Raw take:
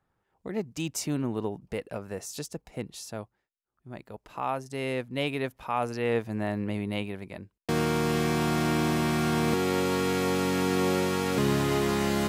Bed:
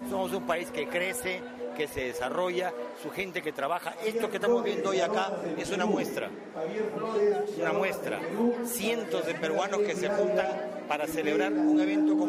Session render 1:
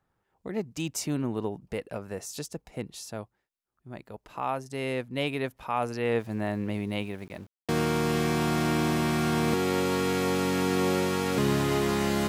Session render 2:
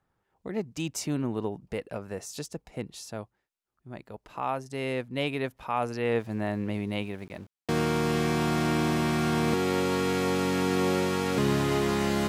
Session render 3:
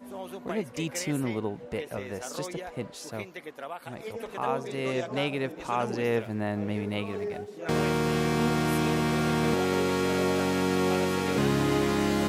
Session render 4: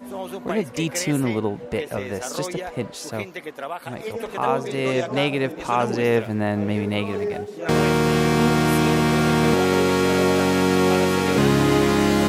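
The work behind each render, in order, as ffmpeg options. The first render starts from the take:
-filter_complex "[0:a]asettb=1/sr,asplit=3[s0][s1][s2];[s0]atrim=end=6.184[s3];[s1]atrim=start=6.18:end=7.91,asetpts=PTS-STARTPTS,afade=t=in:d=0.004:c=qsin,afade=t=out:st=1.726:d=0.004:c=qsin,aeval=exprs='val(0)*gte(abs(val(0)),0.00266)':c=same[s4];[s2]atrim=start=7.906[s5];[s3][s4]acrossfade=d=0.004:c1=hsin:c2=qsin[s6];[s6][s5]acrossfade=d=0.004:c1=qsin:c2=hsin"
-af "highshelf=f=11000:g=-6"
-filter_complex "[1:a]volume=0.376[s0];[0:a][s0]amix=inputs=2:normalize=0"
-af "volume=2.37"

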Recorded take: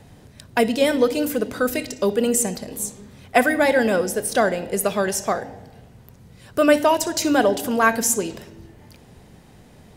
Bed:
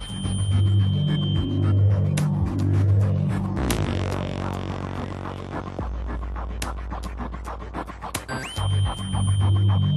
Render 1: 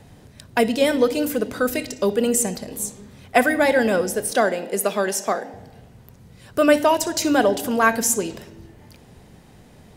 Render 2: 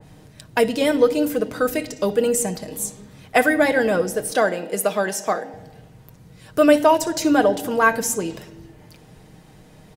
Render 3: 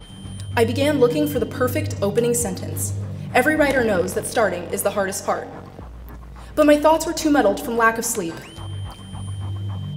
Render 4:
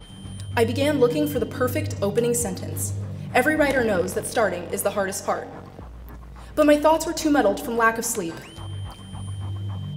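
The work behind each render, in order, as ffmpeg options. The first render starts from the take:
-filter_complex "[0:a]asettb=1/sr,asplit=3[s0][s1][s2];[s0]atrim=end=4.324[s3];[s1]atrim=start=4.32:end=5.54,asetpts=PTS-STARTPTS,afade=t=in:d=0.004:c=qsin,afade=t=out:st=1.216:d=0.004:c=qsin,highpass=f=200:w=0.5412,highpass=f=200:w=1.3066[s4];[s2]atrim=start=5.536[s5];[s3][s4]acrossfade=d=0.004:c1=hsin:c2=qsin[s6];[s6][s5]acrossfade=d=0.004:c1=qsin:c2=hsin"
-af "aecho=1:1:6.4:0.43,adynamicequalizer=threshold=0.02:dfrequency=2000:dqfactor=0.7:tfrequency=2000:tqfactor=0.7:attack=5:release=100:ratio=0.375:range=2.5:mode=cutabove:tftype=highshelf"
-filter_complex "[1:a]volume=0.376[s0];[0:a][s0]amix=inputs=2:normalize=0"
-af "volume=0.75"

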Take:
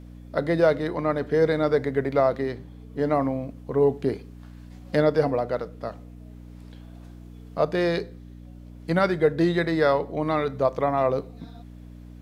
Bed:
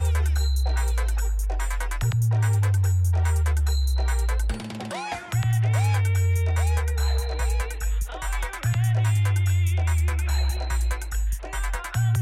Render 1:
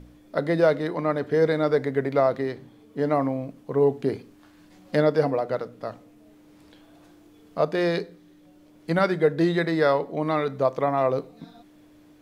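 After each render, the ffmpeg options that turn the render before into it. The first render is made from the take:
-af "bandreject=f=60:t=h:w=4,bandreject=f=120:t=h:w=4,bandreject=f=180:t=h:w=4,bandreject=f=240:t=h:w=4"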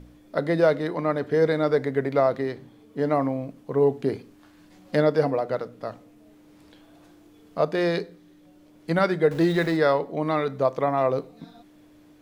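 -filter_complex "[0:a]asettb=1/sr,asplit=3[s0][s1][s2];[s0]atrim=end=9.314[s3];[s1]atrim=start=9.31:end=9.77,asetpts=PTS-STARTPTS,afade=t=in:d=0.004:c=qsin,afade=t=out:st=0.456:d=0.004:c=qsin,aeval=exprs='val(0)+0.5*0.0178*sgn(val(0))':c=same[s4];[s2]atrim=start=9.766[s5];[s3][s4]acrossfade=d=0.004:c1=hsin:c2=qsin[s6];[s6][s5]acrossfade=d=0.004:c1=qsin:c2=hsin"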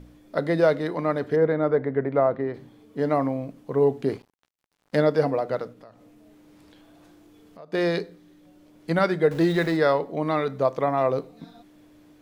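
-filter_complex "[0:a]asplit=3[s0][s1][s2];[s0]afade=t=out:st=1.35:d=0.02[s3];[s1]lowpass=1700,afade=t=in:st=1.35:d=0.02,afade=t=out:st=2.53:d=0.02[s4];[s2]afade=t=in:st=2.53:d=0.02[s5];[s3][s4][s5]amix=inputs=3:normalize=0,asettb=1/sr,asplit=3[s6][s7][s8];[s6]atrim=end=4.104[s9];[s7]atrim=start=4.1:end=4.98,asetpts=PTS-STARTPTS,afade=t=in:d=0.004:c=qsin,afade=t=out:st=0.876:d=0.004:c=qsin,aeval=exprs='sgn(val(0))*max(abs(val(0))-0.00501,0)':c=same[s10];[s8]atrim=start=4.976[s11];[s9][s10]acrossfade=d=0.004:c1=hsin:c2=qsin[s12];[s12][s11]acrossfade=d=0.004:c1=qsin:c2=hsin,asplit=3[s13][s14][s15];[s13]afade=t=out:st=5.72:d=0.02[s16];[s14]acompressor=threshold=0.00398:ratio=3:attack=3.2:release=140:knee=1:detection=peak,afade=t=in:st=5.72:d=0.02,afade=t=out:st=7.72:d=0.02[s17];[s15]afade=t=in:st=7.72:d=0.02[s18];[s16][s17][s18]amix=inputs=3:normalize=0"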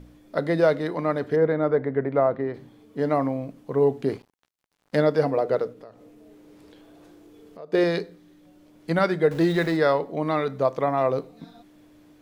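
-filter_complex "[0:a]asettb=1/sr,asplit=3[s0][s1][s2];[s0]atrim=end=5.374[s3];[s1]atrim=start=5.37:end=7.84,asetpts=PTS-STARTPTS,afade=t=in:d=0.004:c=qsin,afade=t=out:st=2.466:d=0.004:c=qsin,equalizer=f=430:w=2.3:g=8.5[s4];[s2]atrim=start=7.836[s5];[s3][s4]acrossfade=d=0.004:c1=hsin:c2=qsin[s6];[s6][s5]acrossfade=d=0.004:c1=qsin:c2=hsin"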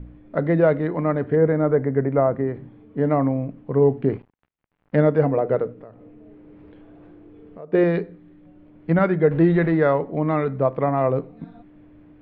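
-af "lowpass=f=2600:w=0.5412,lowpass=f=2600:w=1.3066,lowshelf=f=240:g=11"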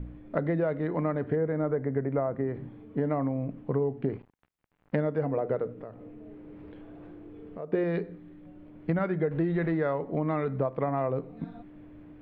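-af "acompressor=threshold=0.0562:ratio=6"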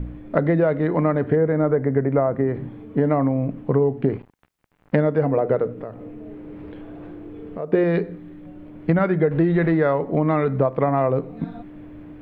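-af "volume=2.82"

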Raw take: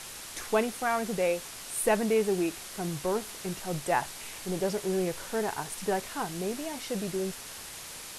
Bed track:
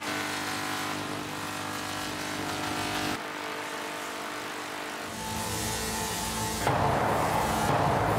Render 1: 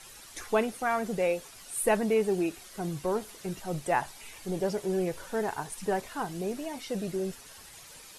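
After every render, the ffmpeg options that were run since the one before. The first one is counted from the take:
-af "afftdn=nr=10:nf=-43"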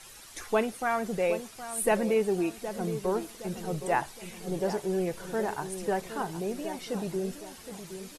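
-filter_complex "[0:a]asplit=2[s0][s1];[s1]adelay=767,lowpass=f=1100:p=1,volume=0.316,asplit=2[s2][s3];[s3]adelay=767,lowpass=f=1100:p=1,volume=0.46,asplit=2[s4][s5];[s5]adelay=767,lowpass=f=1100:p=1,volume=0.46,asplit=2[s6][s7];[s7]adelay=767,lowpass=f=1100:p=1,volume=0.46,asplit=2[s8][s9];[s9]adelay=767,lowpass=f=1100:p=1,volume=0.46[s10];[s0][s2][s4][s6][s8][s10]amix=inputs=6:normalize=0"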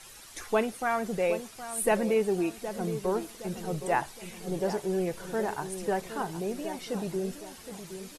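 -af anull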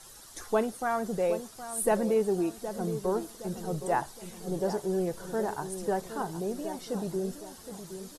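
-af "equalizer=f=2400:w=1.8:g=-11"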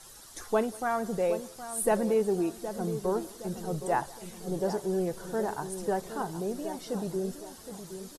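-af "aecho=1:1:188:0.0668"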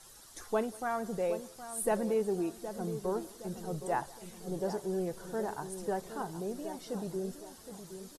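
-af "volume=0.596"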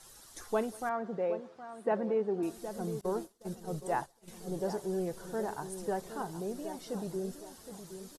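-filter_complex "[0:a]asettb=1/sr,asplit=3[s0][s1][s2];[s0]atrim=end=0.894[s3];[s1]atrim=start=0.89:end=2.43,asetpts=PTS-STARTPTS,afade=t=in:d=0.004:c=qsin,afade=t=out:st=1.536:d=0.004:c=qsin,highpass=170,lowpass=2200[s4];[s2]atrim=start=2.426[s5];[s3][s4]acrossfade=d=0.004:c1=hsin:c2=qsin[s6];[s6][s5]acrossfade=d=0.004:c1=qsin:c2=hsin,asettb=1/sr,asplit=3[s7][s8][s9];[s7]atrim=end=3.014[s10];[s8]atrim=start=3.01:end=4.28,asetpts=PTS-STARTPTS,afade=t=in:d=0.004:c=qsin,afade=t=out:st=1.266:d=0.004:c=qsin,agate=range=0.0224:threshold=0.0112:ratio=3:release=100:detection=peak[s11];[s9]atrim=start=4.276[s12];[s10][s11]acrossfade=d=0.004:c1=hsin:c2=qsin[s13];[s13][s12]acrossfade=d=0.004:c1=qsin:c2=hsin"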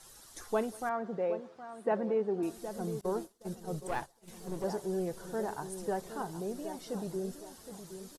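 -filter_complex "[0:a]asettb=1/sr,asplit=3[s0][s1][s2];[s0]atrim=end=3.874[s3];[s1]atrim=start=3.87:end=4.64,asetpts=PTS-STARTPTS,afade=t=in:d=0.004:c=qsin,afade=t=out:st=0.766:d=0.004:c=qsin,aeval=exprs='clip(val(0),-1,0.00794)':c=same[s4];[s2]atrim=start=4.636[s5];[s3][s4]acrossfade=d=0.004:c1=hsin:c2=qsin[s6];[s6][s5]acrossfade=d=0.004:c1=qsin:c2=hsin"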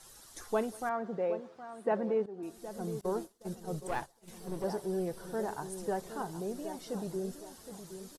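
-filter_complex "[0:a]asettb=1/sr,asplit=3[s0][s1][s2];[s0]atrim=end=4.384[s3];[s1]atrim=start=4.38:end=5.39,asetpts=PTS-STARTPTS,afade=t=in:d=0.004:c=qsin,afade=t=out:st=1.006:d=0.004:c=qsin,bandreject=f=6800:w=6.2[s4];[s2]atrim=start=5.386[s5];[s3][s4]acrossfade=d=0.004:c1=hsin:c2=qsin[s6];[s6][s5]acrossfade=d=0.004:c1=qsin:c2=hsin,asplit=2[s7][s8];[s7]atrim=end=2.26,asetpts=PTS-STARTPTS,afade=t=out:st=2.256:d=0.004:c=hsin:silence=0.16788[s9];[s8]atrim=start=2.26,asetpts=PTS-STARTPTS,afade=t=in:d=0.93:c=qsin:silence=0.16788[s10];[s9][s10]concat=n=2:v=0:a=1"

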